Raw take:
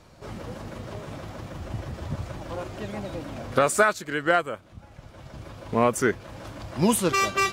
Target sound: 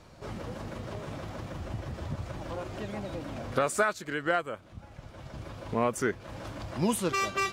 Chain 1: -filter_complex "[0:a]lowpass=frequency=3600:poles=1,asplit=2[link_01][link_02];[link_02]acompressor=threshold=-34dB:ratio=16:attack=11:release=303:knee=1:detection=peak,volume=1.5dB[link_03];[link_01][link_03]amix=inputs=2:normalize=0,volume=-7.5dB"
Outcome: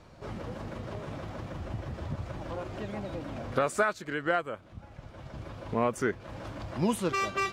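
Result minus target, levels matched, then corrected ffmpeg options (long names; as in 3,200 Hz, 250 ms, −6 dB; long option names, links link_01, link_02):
8,000 Hz band −4.5 dB
-filter_complex "[0:a]lowpass=frequency=10000:poles=1,asplit=2[link_01][link_02];[link_02]acompressor=threshold=-34dB:ratio=16:attack=11:release=303:knee=1:detection=peak,volume=1.5dB[link_03];[link_01][link_03]amix=inputs=2:normalize=0,volume=-7.5dB"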